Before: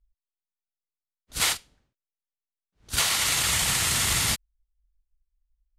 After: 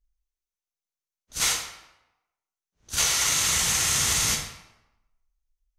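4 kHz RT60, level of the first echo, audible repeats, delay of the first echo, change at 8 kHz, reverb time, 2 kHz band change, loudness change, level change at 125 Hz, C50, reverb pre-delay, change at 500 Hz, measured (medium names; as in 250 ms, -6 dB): 0.70 s, no echo, no echo, no echo, +3.0 dB, 0.95 s, -1.0 dB, +1.0 dB, -2.5 dB, 5.0 dB, 13 ms, -0.5 dB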